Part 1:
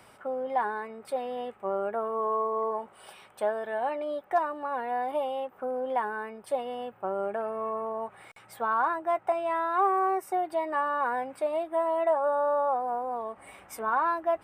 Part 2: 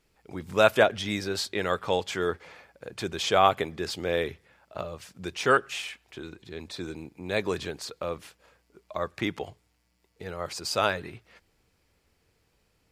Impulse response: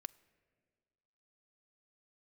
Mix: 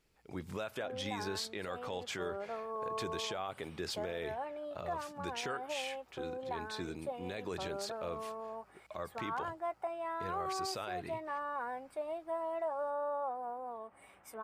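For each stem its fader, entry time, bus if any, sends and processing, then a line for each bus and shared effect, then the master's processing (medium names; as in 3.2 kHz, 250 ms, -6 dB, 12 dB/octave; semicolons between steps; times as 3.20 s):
-10.5 dB, 0.55 s, no send, none
-5.0 dB, 0.00 s, no send, compression 2.5:1, threshold -28 dBFS, peak gain reduction 10 dB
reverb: none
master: peak limiter -28.5 dBFS, peak gain reduction 9.5 dB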